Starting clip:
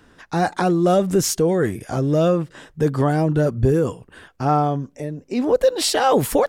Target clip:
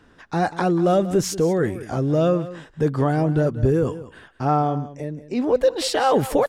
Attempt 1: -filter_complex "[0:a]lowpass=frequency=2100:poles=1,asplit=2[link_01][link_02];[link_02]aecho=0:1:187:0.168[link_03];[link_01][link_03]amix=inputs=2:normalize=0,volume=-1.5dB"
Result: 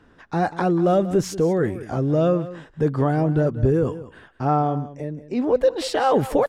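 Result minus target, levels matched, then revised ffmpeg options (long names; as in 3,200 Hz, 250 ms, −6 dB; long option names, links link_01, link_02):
4,000 Hz band −4.0 dB
-filter_complex "[0:a]lowpass=frequency=4800:poles=1,asplit=2[link_01][link_02];[link_02]aecho=0:1:187:0.168[link_03];[link_01][link_03]amix=inputs=2:normalize=0,volume=-1.5dB"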